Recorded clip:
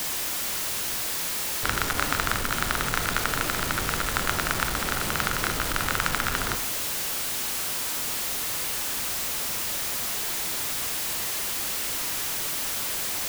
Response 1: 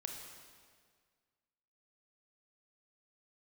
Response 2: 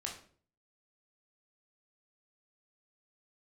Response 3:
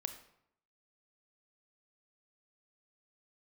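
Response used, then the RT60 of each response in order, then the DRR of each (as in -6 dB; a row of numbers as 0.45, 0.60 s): 3; 1.8, 0.50, 0.75 s; 2.0, -1.0, 8.0 dB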